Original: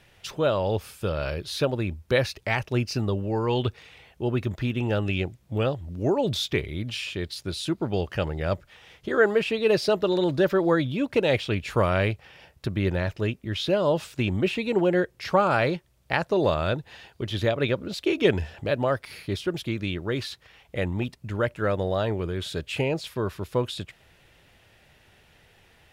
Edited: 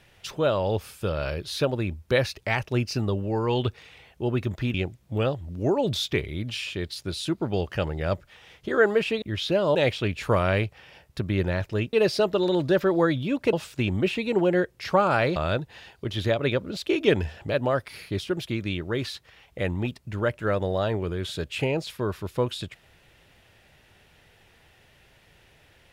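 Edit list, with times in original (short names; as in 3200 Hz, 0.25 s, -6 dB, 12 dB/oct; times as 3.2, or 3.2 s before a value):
4.74–5.14 cut
9.62–11.22 swap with 13.4–13.93
15.76–16.53 cut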